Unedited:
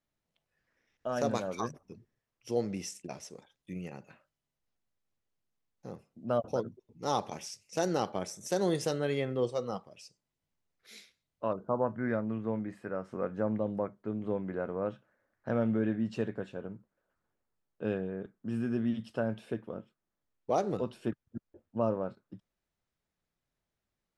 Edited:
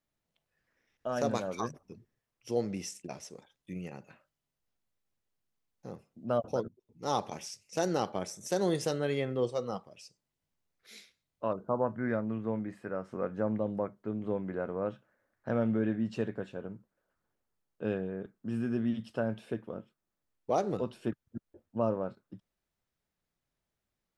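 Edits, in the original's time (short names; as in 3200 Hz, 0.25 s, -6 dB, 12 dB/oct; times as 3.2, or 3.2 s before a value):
6.68–7.14 fade in, from -15 dB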